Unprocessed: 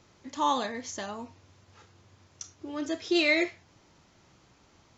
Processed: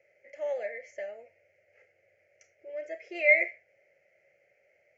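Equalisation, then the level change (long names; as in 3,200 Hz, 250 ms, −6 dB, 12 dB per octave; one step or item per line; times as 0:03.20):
pair of resonant band-passes 1,100 Hz, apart 1.9 octaves
phaser with its sweep stopped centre 1,000 Hz, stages 6
+7.0 dB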